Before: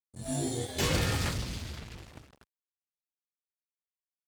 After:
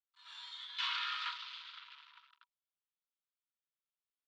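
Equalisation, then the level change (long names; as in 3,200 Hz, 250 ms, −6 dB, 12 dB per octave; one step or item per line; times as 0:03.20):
Chebyshev high-pass with heavy ripple 940 Hz, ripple 9 dB
low-pass filter 3,700 Hz 24 dB per octave
+2.5 dB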